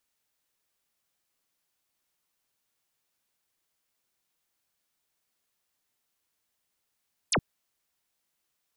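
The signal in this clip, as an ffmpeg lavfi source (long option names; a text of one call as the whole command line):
ffmpeg -f lavfi -i "aevalsrc='0.0794*clip(t/0.002,0,1)*clip((0.07-t)/0.002,0,1)*sin(2*PI*11000*0.07/log(92/11000)*(exp(log(92/11000)*t/0.07)-1))':duration=0.07:sample_rate=44100" out.wav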